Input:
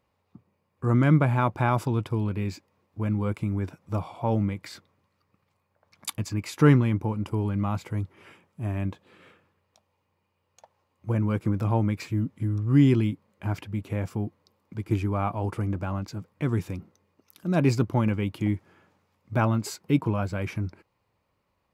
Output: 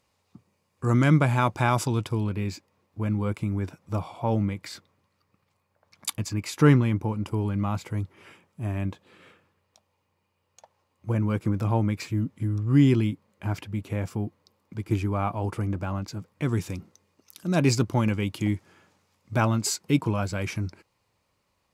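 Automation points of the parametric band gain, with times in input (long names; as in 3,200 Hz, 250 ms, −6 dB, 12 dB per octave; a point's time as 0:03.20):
parametric band 7,000 Hz 2.1 octaves
0:01.92 +13.5 dB
0:02.37 +4 dB
0:16.12 +4 dB
0:16.79 +10.5 dB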